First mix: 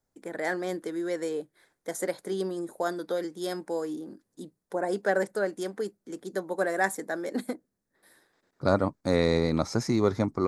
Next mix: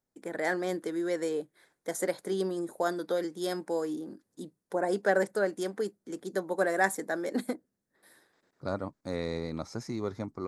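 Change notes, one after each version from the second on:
second voice −10.0 dB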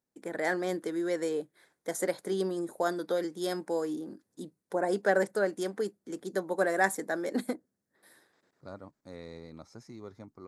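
second voice −11.5 dB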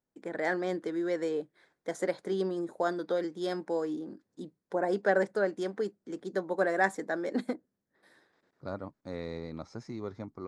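second voice +7.0 dB
master: add high-frequency loss of the air 94 metres

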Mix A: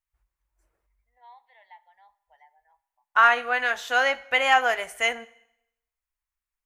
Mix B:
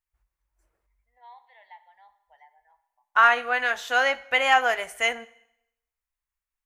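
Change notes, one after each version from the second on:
first voice: send +8.5 dB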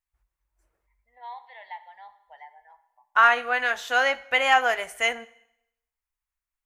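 first voice +9.0 dB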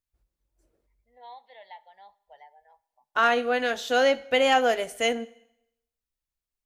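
first voice: send −11.5 dB
master: add octave-band graphic EQ 125/250/500/1,000/2,000/4,000 Hz +5/+11/+7/−7/−6/+5 dB

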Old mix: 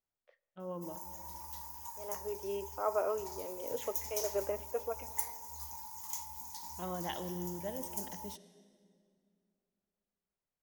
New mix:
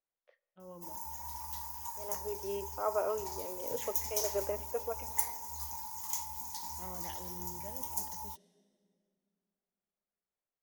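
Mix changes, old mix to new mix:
first voice −8.5 dB
background +4.0 dB

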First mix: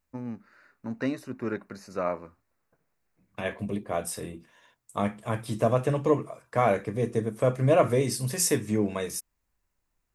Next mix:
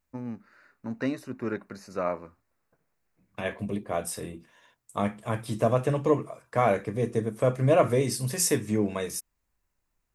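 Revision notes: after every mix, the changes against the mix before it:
nothing changed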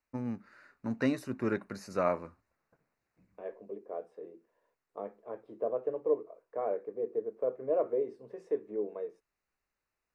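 second voice: add four-pole ladder band-pass 490 Hz, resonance 55%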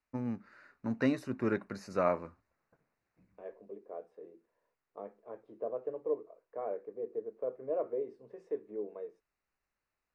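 second voice −4.5 dB
master: add high-shelf EQ 8,200 Hz −9.5 dB

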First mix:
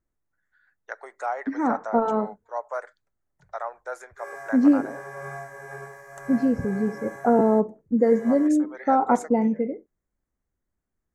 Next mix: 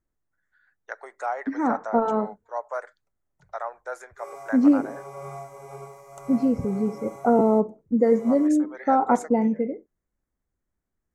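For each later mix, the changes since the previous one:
background: add Butterworth band-reject 1,700 Hz, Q 2.6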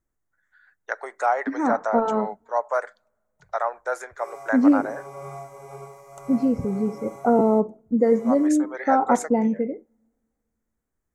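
first voice +6.5 dB
reverb: on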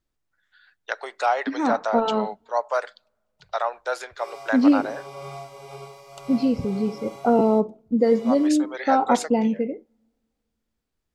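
master: add flat-topped bell 3,600 Hz +16 dB 1.2 octaves

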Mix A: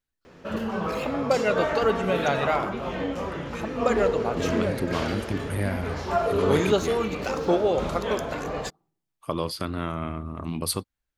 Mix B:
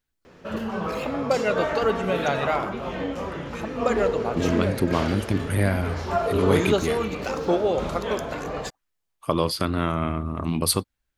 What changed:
second voice +5.5 dB
reverb: off

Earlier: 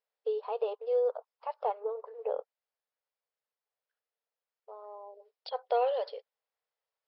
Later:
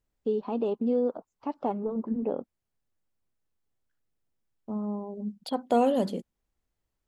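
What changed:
second voice +3.5 dB
master: remove linear-phase brick-wall band-pass 420–5,500 Hz

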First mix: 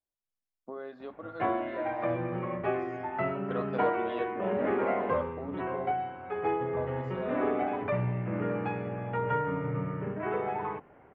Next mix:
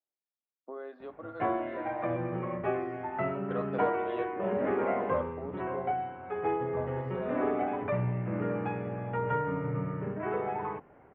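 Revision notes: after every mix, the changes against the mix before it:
speech: add high-pass filter 280 Hz 24 dB per octave
master: add high-frequency loss of the air 230 metres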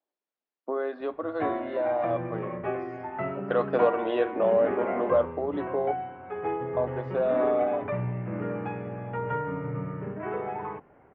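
speech +12.0 dB

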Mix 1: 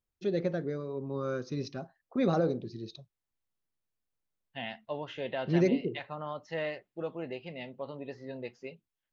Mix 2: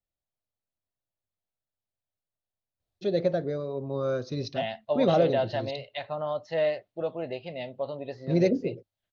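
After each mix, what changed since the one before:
first voice: entry +2.80 s
master: add graphic EQ with 15 bands 100 Hz +10 dB, 630 Hz +11 dB, 4,000 Hz +8 dB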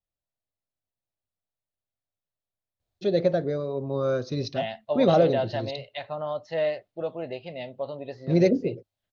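first voice +3.0 dB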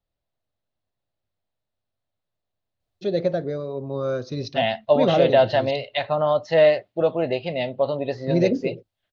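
second voice +10.5 dB

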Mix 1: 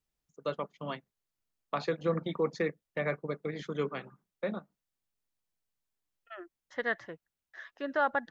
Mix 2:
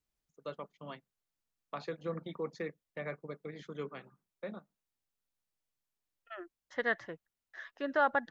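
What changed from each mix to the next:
first voice −8.0 dB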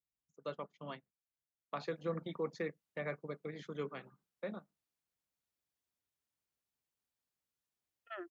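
second voice: entry +1.80 s
master: add high-pass filter 48 Hz

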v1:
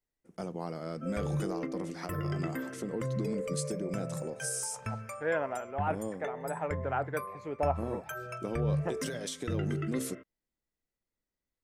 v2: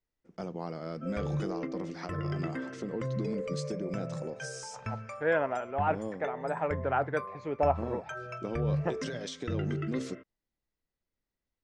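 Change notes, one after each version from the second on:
second voice +3.5 dB
master: add low-pass filter 6,000 Hz 24 dB per octave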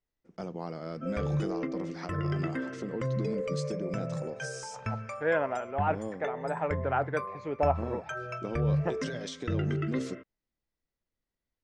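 background +3.0 dB

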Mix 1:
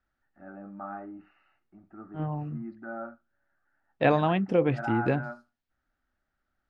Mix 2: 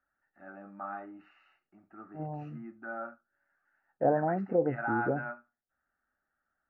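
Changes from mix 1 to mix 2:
second voice: add Butterworth low-pass 820 Hz 48 dB per octave
master: add spectral tilt +3 dB per octave

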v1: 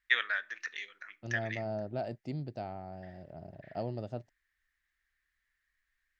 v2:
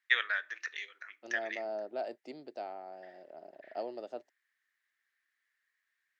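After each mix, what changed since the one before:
master: add high-pass filter 330 Hz 24 dB per octave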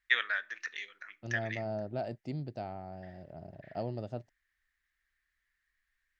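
master: remove high-pass filter 330 Hz 24 dB per octave

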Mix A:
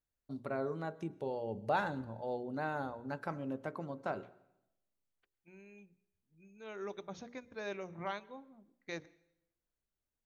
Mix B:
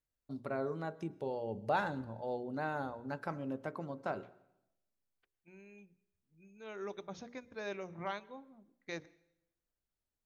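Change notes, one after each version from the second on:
master: remove notch filter 5,100 Hz, Q 16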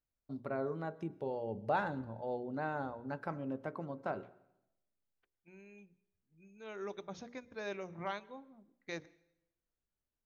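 first voice: add high-shelf EQ 4,500 Hz −12 dB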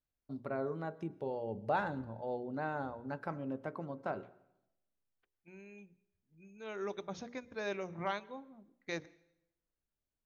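second voice +3.0 dB

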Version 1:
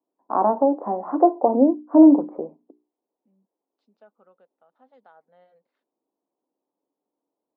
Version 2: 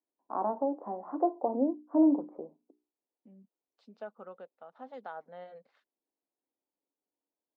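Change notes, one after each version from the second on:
first voice −12.0 dB
second voice +10.5 dB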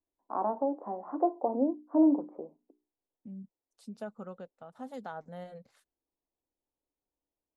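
second voice: remove band-pass filter 400–4,100 Hz
master: remove high-frequency loss of the air 130 metres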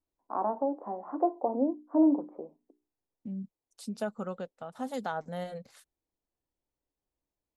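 second voice +6.5 dB
master: add high-shelf EQ 3,000 Hz +7.5 dB

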